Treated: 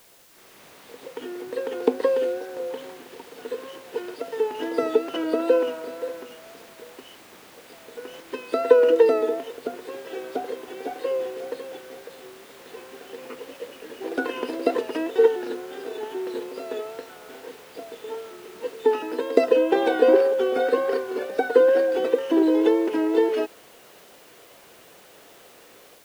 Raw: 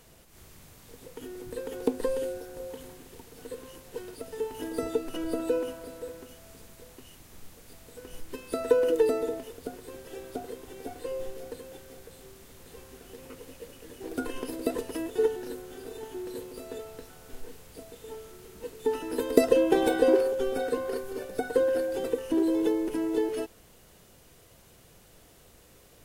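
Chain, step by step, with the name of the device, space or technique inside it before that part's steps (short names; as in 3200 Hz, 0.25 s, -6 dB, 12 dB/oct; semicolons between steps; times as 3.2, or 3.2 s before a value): dictaphone (BPF 360–3600 Hz; AGC gain up to 10 dB; wow and flutter; white noise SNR 30 dB)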